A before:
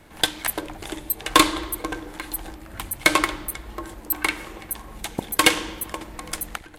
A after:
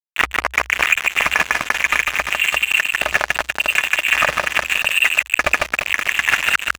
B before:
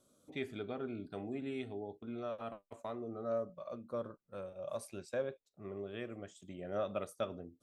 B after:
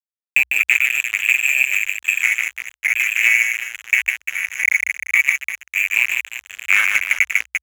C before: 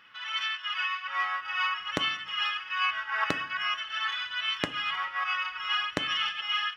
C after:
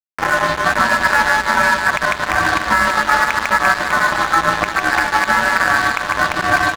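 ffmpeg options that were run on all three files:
ffmpeg -i in.wav -filter_complex "[0:a]aeval=exprs='val(0)+0.00398*sin(2*PI*1000*n/s)':channel_layout=same,afwtdn=0.02,lowpass=frequency=2400:width_type=q:width=0.5098,lowpass=frequency=2400:width_type=q:width=0.6013,lowpass=frequency=2400:width_type=q:width=0.9,lowpass=frequency=2400:width_type=q:width=2.563,afreqshift=-2800,acompressor=threshold=-41dB:ratio=16,tiltshelf=frequency=770:gain=-5.5,adynamicsmooth=sensitivity=6:basefreq=800,asplit=2[link_01][link_02];[link_02]aecho=0:1:150|345|598.5|928|1356:0.631|0.398|0.251|0.158|0.1[link_03];[link_01][link_03]amix=inputs=2:normalize=0,aeval=exprs='sgn(val(0))*max(abs(val(0))-0.00355,0)':channel_layout=same,equalizer=frequency=62:width_type=o:width=0.25:gain=12.5,alimiter=level_in=33dB:limit=-1dB:release=50:level=0:latency=1,volume=-1dB" out.wav

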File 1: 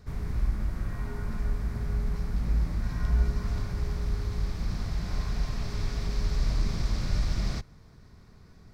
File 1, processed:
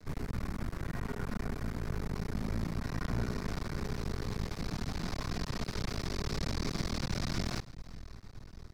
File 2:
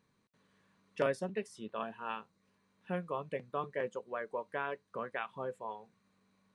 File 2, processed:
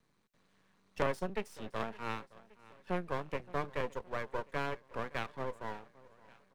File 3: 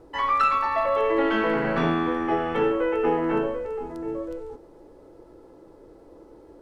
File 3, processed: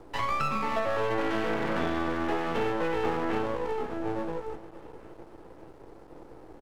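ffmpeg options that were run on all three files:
ffmpeg -i in.wav -filter_complex "[0:a]aecho=1:1:567|1134|1701|2268:0.0841|0.048|0.0273|0.0156,aeval=exprs='max(val(0),0)':channel_layout=same,acrossover=split=130|900[link_01][link_02][link_03];[link_01]acompressor=threshold=-40dB:ratio=4[link_04];[link_02]acompressor=threshold=-32dB:ratio=4[link_05];[link_03]acompressor=threshold=-38dB:ratio=4[link_06];[link_04][link_05][link_06]amix=inputs=3:normalize=0,volume=4dB" out.wav

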